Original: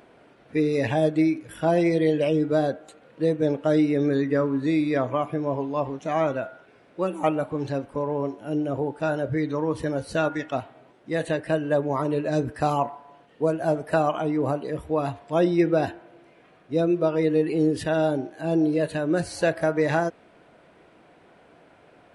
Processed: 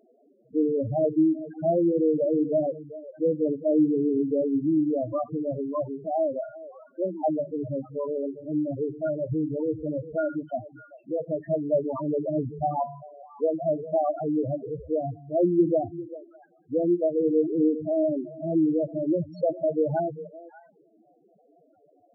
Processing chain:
echo through a band-pass that steps 197 ms, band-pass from 170 Hz, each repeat 1.4 octaves, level −11 dB
spectral peaks only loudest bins 4

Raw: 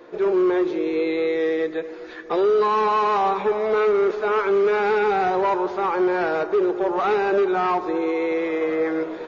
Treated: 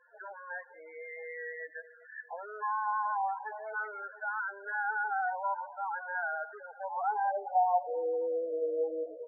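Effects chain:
phaser with its sweep stopped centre 1,800 Hz, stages 8
band-pass filter sweep 1,400 Hz → 420 Hz, 0:06.76–0:08.24
spectral peaks only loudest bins 8

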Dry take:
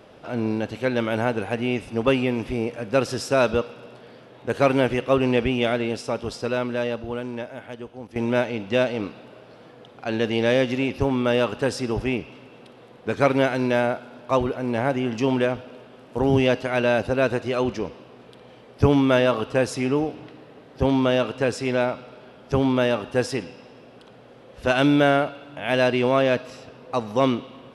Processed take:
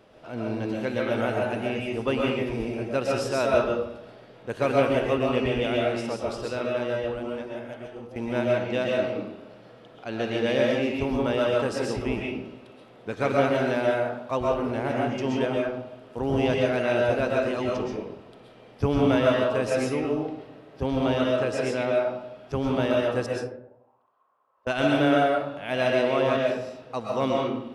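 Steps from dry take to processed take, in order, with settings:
0:23.26–0:24.67: envelope filter 570–1,300 Hz, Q 14, down, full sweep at −31.5 dBFS
convolution reverb RT60 0.70 s, pre-delay 90 ms, DRR −2.5 dB
level −7 dB

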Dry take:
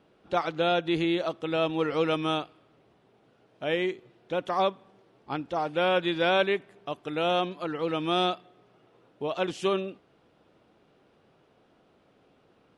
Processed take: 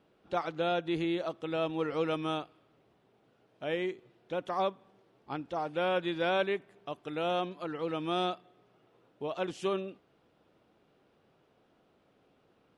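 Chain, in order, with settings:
dynamic equaliser 3,400 Hz, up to −3 dB, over −41 dBFS, Q 0.78
level −5 dB

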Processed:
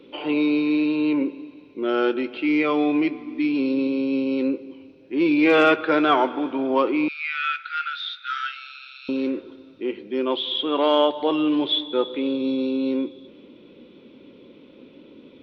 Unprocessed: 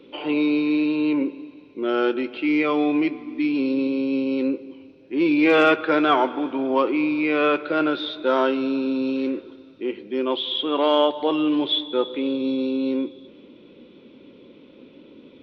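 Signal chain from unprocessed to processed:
0:07.08–0:09.09: linear-phase brick-wall high-pass 1,200 Hz

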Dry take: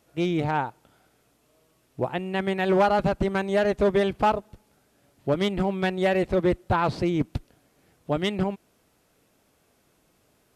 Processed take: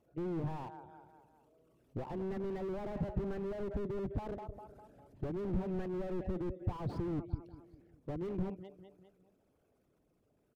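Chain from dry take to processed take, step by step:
spectral envelope exaggerated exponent 2
source passing by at 0:04.38, 5 m/s, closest 7.5 metres
downward compressor 4 to 1, threshold −30 dBFS, peak gain reduction 11.5 dB
repeating echo 201 ms, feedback 50%, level −18.5 dB
slew-rate limiting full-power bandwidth 4.3 Hz
level +2 dB

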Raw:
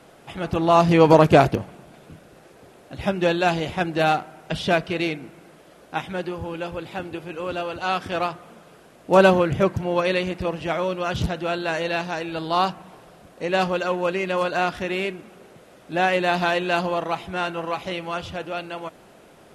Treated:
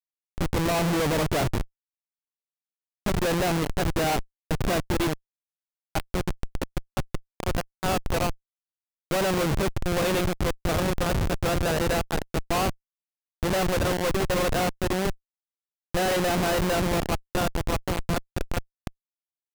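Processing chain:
comparator with hysteresis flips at −22.5 dBFS

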